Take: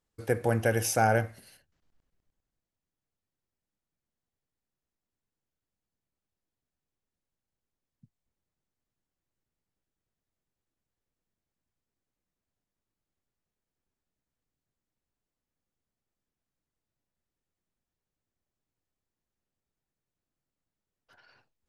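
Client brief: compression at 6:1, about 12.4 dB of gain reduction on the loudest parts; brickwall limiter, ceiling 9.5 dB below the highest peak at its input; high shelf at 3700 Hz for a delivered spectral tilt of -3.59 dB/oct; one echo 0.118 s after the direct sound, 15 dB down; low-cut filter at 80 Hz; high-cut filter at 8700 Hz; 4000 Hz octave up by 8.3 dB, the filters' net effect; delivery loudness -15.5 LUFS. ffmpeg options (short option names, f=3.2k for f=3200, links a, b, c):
-af "highpass=80,lowpass=8.7k,highshelf=f=3.7k:g=7,equalizer=f=4k:t=o:g=6.5,acompressor=threshold=-33dB:ratio=6,alimiter=level_in=6dB:limit=-24dB:level=0:latency=1,volume=-6dB,aecho=1:1:118:0.178,volume=27.5dB"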